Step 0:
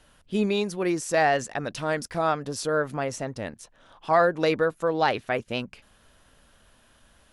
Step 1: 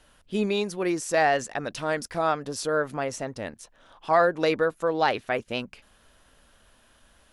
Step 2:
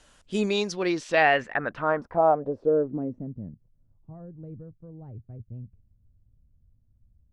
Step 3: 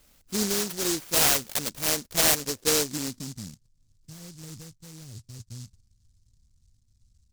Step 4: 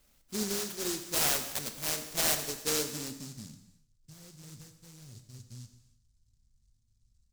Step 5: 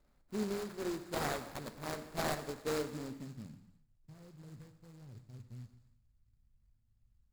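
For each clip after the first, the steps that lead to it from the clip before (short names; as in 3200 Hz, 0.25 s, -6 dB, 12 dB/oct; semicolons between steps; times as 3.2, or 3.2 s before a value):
bell 130 Hz -4 dB 1.4 oct
low-pass sweep 7500 Hz -> 110 Hz, 0.46–3.78
noise-modulated delay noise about 5900 Hz, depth 0.38 ms; gain -1.5 dB
non-linear reverb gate 0.37 s falling, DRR 6.5 dB; gain -7.5 dB
median filter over 15 samples; gain -1.5 dB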